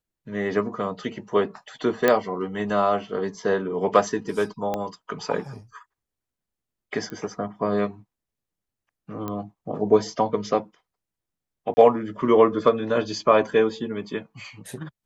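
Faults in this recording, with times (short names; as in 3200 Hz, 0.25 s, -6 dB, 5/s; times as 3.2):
2.08 pop -6 dBFS
4.74 pop -14 dBFS
7.1 pop -21 dBFS
9.28 pop -17 dBFS
11.74–11.77 gap 30 ms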